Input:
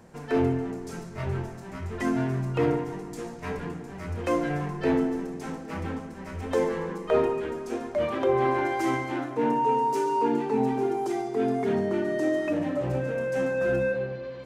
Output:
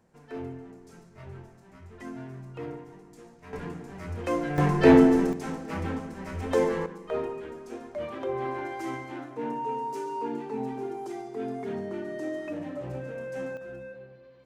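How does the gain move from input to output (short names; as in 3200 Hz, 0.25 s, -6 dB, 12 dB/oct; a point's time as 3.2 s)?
-13.5 dB
from 3.53 s -2.5 dB
from 4.58 s +8.5 dB
from 5.33 s +1 dB
from 6.86 s -8 dB
from 13.57 s -16.5 dB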